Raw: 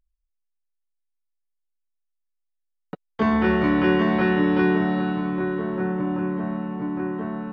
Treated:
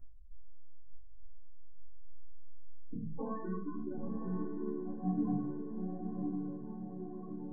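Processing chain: 3.57–5.33 gate with hold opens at -10 dBFS; high shelf 2200 Hz -6 dB; flipped gate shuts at -25 dBFS, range -33 dB; soft clip -38.5 dBFS, distortion -7 dB; chorus voices 4, 0.4 Hz, delay 17 ms, depth 3.8 ms; loudest bins only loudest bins 8; Butterworth band-stop 3400 Hz, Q 0.79; on a send: diffused feedback echo 0.989 s, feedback 54%, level -6 dB; on the sum: shoebox room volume 360 m³, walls furnished, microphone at 3.2 m; ending taper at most 110 dB/s; gain +16.5 dB

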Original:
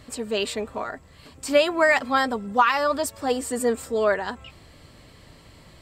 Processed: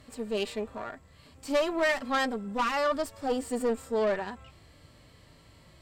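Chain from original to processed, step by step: tube stage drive 21 dB, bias 0.65; harmonic-percussive split percussive -11 dB

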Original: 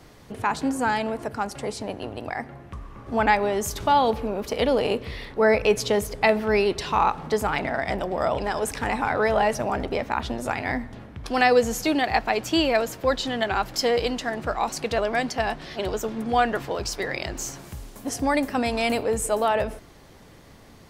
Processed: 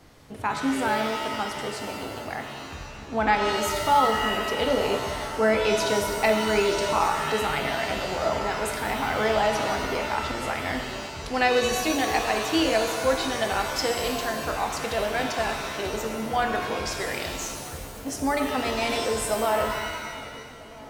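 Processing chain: notches 60/120/180/240/300/360/420/480/540/600 Hz; on a send: darkening echo 0.646 s, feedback 82%, low-pass 2600 Hz, level -20 dB; on the sum: shimmer reverb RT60 1.4 s, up +7 st, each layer -2 dB, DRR 4.5 dB; gain -3.5 dB

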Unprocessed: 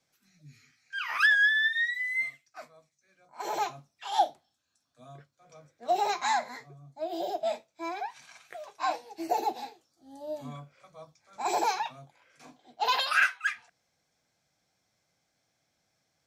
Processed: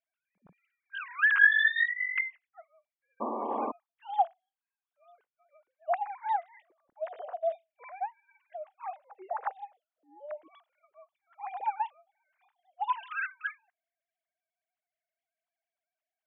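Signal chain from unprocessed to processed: sine-wave speech; painted sound noise, 3.2–3.72, 210–1200 Hz -31 dBFS; gain -2 dB

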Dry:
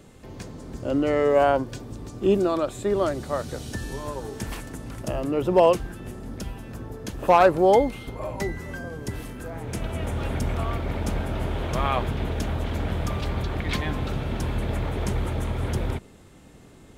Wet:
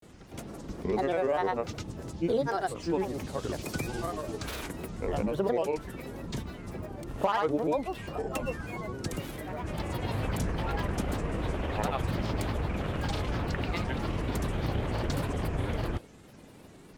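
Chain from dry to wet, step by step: low shelf 63 Hz -7 dB; compressor 5:1, threshold -24 dBFS, peak gain reduction 11.5 dB; grains, grains 20/s, pitch spread up and down by 7 st

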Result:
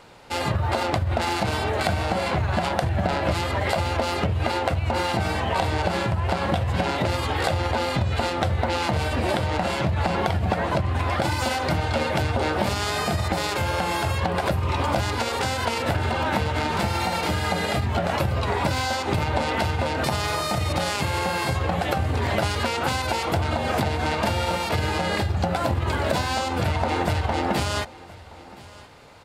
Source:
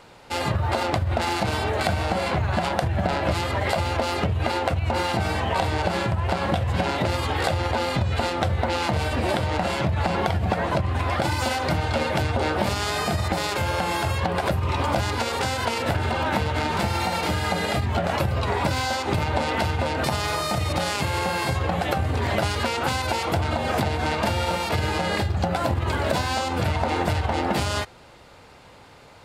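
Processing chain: on a send: echo 1.021 s -21 dB

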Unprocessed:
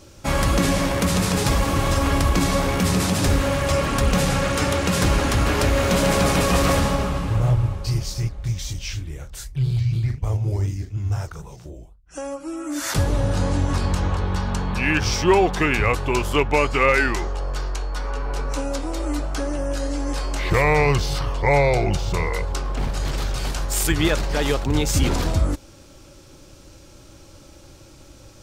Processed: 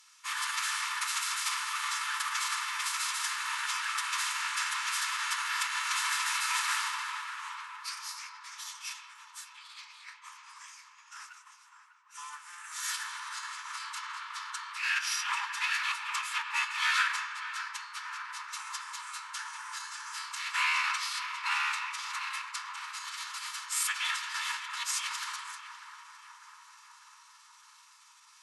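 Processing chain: minimum comb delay 1.2 ms; on a send at -8 dB: reverb RT60 1.9 s, pre-delay 80 ms; on the sum: formant-preserving pitch shift -11 st; steep high-pass 980 Hz 96 dB/oct; darkening echo 0.598 s, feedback 79%, low-pass 1600 Hz, level -9 dB; gain -3.5 dB

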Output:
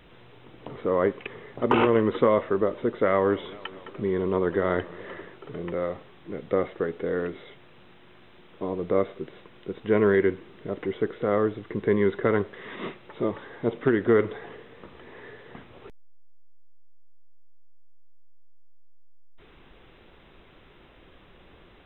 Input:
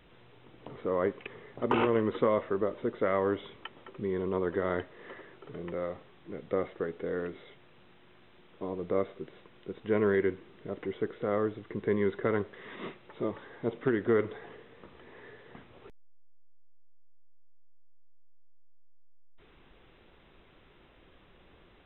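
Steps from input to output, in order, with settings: 3.09–5.3 warbling echo 0.214 s, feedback 73%, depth 164 cents, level -21 dB; gain +6 dB

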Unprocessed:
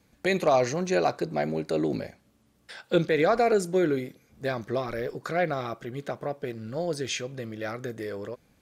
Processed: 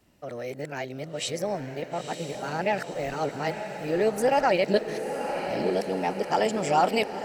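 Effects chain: whole clip reversed; diffused feedback echo 1.129 s, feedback 55%, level -7.5 dB; varispeed +19%

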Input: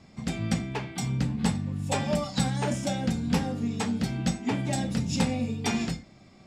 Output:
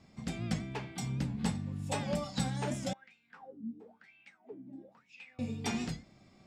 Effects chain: 2.93–5.39 wah 1 Hz 240–2700 Hz, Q 11; record warp 78 rpm, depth 100 cents; gain -7 dB

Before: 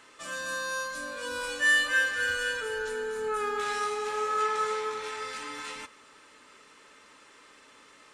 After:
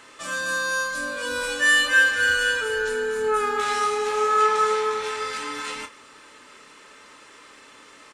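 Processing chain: doubler 28 ms -9 dB; gain +6.5 dB

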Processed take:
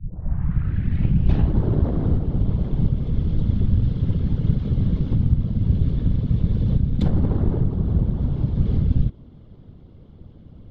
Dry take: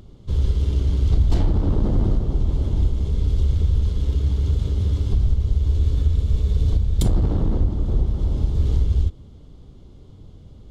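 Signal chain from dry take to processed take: tape start at the beginning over 1.58 s; bell 1700 Hz +3.5 dB 0.55 oct; whisperiser; air absorption 270 m

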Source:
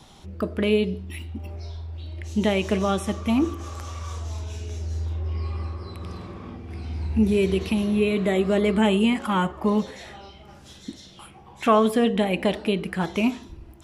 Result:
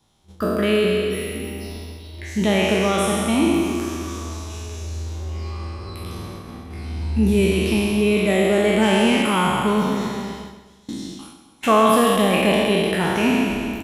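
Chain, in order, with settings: spectral trails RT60 2.37 s; gate -34 dBFS, range -18 dB; high shelf 8600 Hz +9 dB; 8.81–9.21 buzz 400 Hz, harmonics 16, -41 dBFS -1 dB/oct; feedback echo 0.13 s, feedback 49%, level -11 dB

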